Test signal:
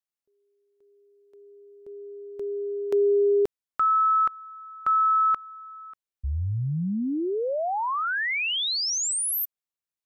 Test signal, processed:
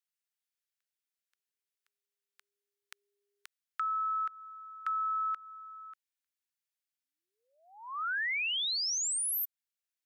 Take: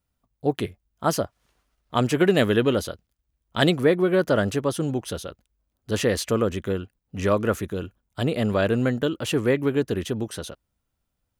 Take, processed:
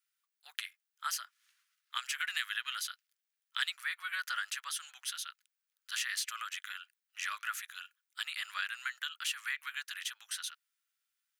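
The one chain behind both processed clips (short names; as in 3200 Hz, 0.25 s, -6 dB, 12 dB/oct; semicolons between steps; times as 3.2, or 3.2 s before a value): steep high-pass 1400 Hz 36 dB/oct; compressor 2.5:1, threshold -34 dBFS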